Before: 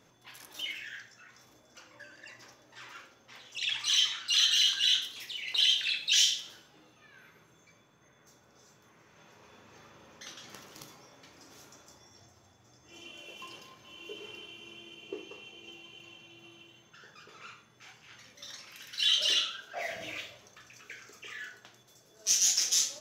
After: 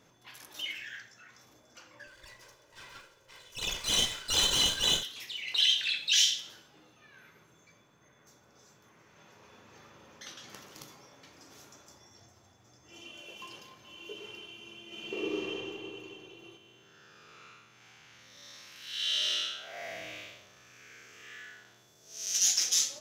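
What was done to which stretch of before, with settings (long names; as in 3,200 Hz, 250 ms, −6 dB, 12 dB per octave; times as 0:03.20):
0:02.07–0:05.03: lower of the sound and its delayed copy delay 2 ms
0:14.86–0:15.53: thrown reverb, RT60 2.8 s, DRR −10 dB
0:16.57–0:22.35: spectrum smeared in time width 236 ms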